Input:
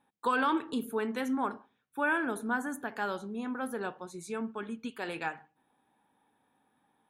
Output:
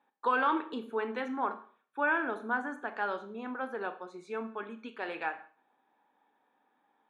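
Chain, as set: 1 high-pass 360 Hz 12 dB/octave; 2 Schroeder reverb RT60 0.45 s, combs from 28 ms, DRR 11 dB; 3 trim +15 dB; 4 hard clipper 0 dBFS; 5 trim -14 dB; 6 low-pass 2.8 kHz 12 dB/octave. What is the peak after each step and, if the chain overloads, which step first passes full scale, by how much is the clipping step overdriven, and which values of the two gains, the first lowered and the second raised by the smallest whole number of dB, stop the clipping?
-17.5 dBFS, -17.0 dBFS, -2.0 dBFS, -2.0 dBFS, -16.0 dBFS, -16.5 dBFS; nothing clips

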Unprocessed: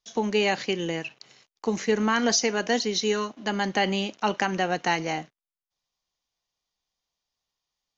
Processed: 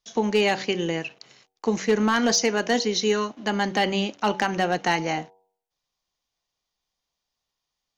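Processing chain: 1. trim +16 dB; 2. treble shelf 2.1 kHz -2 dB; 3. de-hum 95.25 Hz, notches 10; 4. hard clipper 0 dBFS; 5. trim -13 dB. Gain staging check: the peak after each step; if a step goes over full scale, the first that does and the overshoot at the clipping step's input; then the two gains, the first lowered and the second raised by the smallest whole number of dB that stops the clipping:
+5.5 dBFS, +4.5 dBFS, +4.5 dBFS, 0.0 dBFS, -13.0 dBFS; step 1, 4.5 dB; step 1 +11 dB, step 5 -8 dB

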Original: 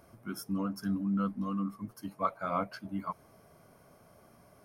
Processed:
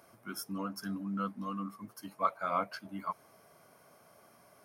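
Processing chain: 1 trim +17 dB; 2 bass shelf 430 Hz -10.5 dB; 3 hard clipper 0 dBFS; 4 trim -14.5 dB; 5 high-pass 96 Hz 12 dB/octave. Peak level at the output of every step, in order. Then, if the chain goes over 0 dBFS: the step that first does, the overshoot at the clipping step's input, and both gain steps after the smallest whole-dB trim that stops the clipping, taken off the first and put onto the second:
-1.0 dBFS, -2.5 dBFS, -2.5 dBFS, -17.0 dBFS, -17.0 dBFS; nothing clips

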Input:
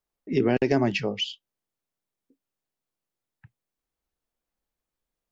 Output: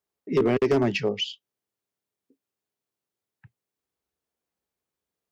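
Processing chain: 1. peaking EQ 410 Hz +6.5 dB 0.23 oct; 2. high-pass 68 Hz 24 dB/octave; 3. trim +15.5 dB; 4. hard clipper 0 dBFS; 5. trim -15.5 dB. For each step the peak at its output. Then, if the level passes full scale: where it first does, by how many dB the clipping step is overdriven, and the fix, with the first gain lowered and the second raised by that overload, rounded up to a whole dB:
-8.0 dBFS, -8.0 dBFS, +7.5 dBFS, 0.0 dBFS, -15.5 dBFS; step 3, 7.5 dB; step 3 +7.5 dB, step 5 -7.5 dB

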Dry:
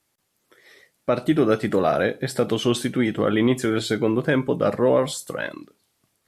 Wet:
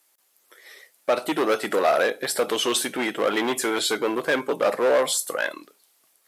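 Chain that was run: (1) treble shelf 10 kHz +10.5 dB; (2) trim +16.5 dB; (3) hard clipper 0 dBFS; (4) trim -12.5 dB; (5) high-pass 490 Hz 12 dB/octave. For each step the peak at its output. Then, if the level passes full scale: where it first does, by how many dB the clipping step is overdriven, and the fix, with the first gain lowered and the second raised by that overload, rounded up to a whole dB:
-7.5 dBFS, +9.0 dBFS, 0.0 dBFS, -12.5 dBFS, -8.0 dBFS; step 2, 9.0 dB; step 2 +7.5 dB, step 4 -3.5 dB

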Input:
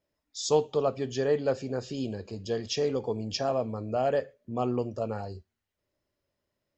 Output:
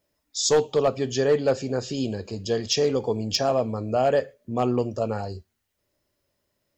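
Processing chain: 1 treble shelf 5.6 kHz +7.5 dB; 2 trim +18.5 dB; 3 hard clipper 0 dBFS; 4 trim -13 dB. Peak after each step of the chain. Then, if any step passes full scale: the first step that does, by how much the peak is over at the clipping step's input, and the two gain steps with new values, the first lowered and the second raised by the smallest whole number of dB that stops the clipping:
-11.0 dBFS, +7.5 dBFS, 0.0 dBFS, -13.0 dBFS; step 2, 7.5 dB; step 2 +10.5 dB, step 4 -5 dB

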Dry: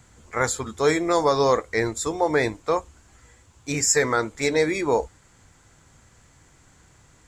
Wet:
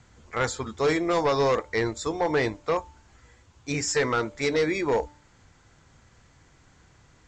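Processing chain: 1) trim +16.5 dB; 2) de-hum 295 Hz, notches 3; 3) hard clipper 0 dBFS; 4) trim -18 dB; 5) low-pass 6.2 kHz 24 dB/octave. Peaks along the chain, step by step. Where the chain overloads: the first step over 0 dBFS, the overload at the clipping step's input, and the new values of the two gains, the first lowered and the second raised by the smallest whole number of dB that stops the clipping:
+10.0 dBFS, +10.0 dBFS, 0.0 dBFS, -18.0 dBFS, -16.5 dBFS; step 1, 10.0 dB; step 1 +6.5 dB, step 4 -8 dB

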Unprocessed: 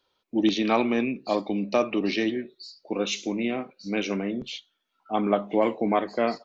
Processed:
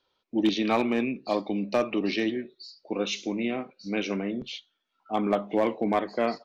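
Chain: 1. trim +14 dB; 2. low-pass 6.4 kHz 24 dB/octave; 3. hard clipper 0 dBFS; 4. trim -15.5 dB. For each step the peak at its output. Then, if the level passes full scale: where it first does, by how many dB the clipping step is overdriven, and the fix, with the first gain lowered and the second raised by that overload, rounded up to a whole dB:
+4.5 dBFS, +4.5 dBFS, 0.0 dBFS, -15.5 dBFS; step 1, 4.5 dB; step 1 +9 dB, step 4 -10.5 dB

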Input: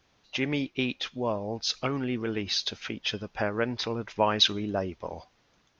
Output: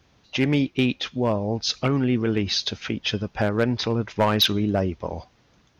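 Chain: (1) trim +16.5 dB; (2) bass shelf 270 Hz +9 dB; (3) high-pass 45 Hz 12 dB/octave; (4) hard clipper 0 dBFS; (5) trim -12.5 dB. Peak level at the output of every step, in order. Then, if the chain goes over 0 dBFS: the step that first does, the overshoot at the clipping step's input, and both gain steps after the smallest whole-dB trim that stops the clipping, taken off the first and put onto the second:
+7.0 dBFS, +8.5 dBFS, +9.0 dBFS, 0.0 dBFS, -12.5 dBFS; step 1, 9.0 dB; step 1 +7.5 dB, step 5 -3.5 dB

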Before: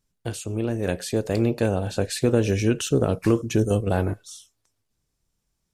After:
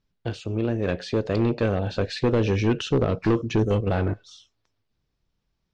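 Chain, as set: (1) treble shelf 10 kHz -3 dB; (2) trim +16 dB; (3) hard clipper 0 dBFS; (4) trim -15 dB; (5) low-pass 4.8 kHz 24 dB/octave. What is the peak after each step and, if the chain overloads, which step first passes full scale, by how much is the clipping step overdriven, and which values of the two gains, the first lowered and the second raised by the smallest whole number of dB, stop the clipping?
-7.0 dBFS, +9.0 dBFS, 0.0 dBFS, -15.0 dBFS, -14.5 dBFS; step 2, 9.0 dB; step 2 +7 dB, step 4 -6 dB

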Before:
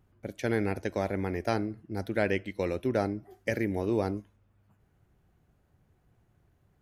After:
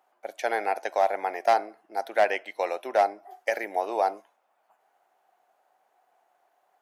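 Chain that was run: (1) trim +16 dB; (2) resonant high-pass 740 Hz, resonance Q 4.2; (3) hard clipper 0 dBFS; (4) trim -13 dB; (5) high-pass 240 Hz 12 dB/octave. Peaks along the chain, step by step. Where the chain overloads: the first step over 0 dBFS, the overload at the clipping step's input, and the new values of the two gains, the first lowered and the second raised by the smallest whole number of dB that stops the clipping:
+2.5 dBFS, +5.0 dBFS, 0.0 dBFS, -13.0 dBFS, -10.0 dBFS; step 1, 5.0 dB; step 1 +11 dB, step 4 -8 dB

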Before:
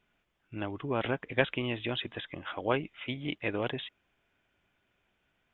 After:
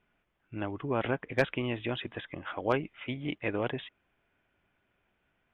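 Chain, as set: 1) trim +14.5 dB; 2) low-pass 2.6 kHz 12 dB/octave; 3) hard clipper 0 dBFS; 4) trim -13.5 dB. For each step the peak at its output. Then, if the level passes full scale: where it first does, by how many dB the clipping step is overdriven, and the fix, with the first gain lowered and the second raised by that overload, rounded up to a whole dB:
+6.5 dBFS, +5.5 dBFS, 0.0 dBFS, -13.5 dBFS; step 1, 5.5 dB; step 1 +8.5 dB, step 4 -7.5 dB

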